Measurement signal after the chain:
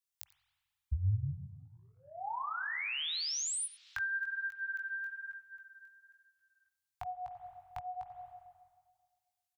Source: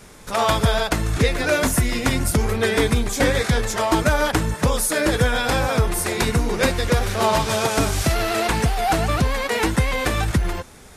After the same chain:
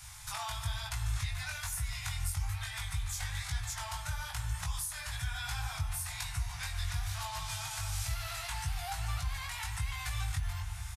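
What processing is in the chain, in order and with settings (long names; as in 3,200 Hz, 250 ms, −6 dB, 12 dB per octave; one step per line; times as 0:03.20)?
high-shelf EQ 2,600 Hz +9.5 dB
single-tap delay 90 ms −21 dB
spring reverb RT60 1.7 s, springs 44/49 ms, chirp 50 ms, DRR 9 dB
downward compressor 6 to 1, threshold −28 dBFS
elliptic band-stop filter 130–800 Hz, stop band 40 dB
chorus effect 1.1 Hz, delay 18 ms, depth 3.7 ms
parametric band 75 Hz +11.5 dB 1.1 octaves
level −5 dB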